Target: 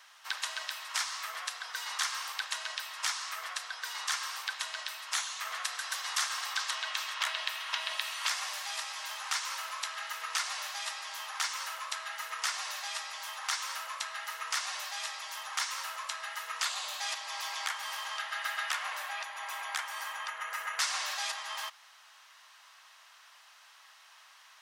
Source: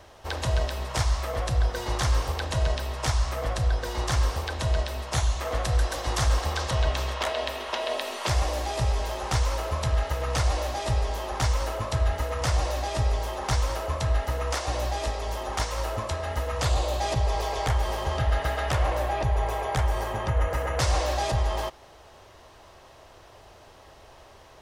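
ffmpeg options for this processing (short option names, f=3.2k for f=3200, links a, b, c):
-af "highpass=f=1.2k:w=0.5412,highpass=f=1.2k:w=1.3066"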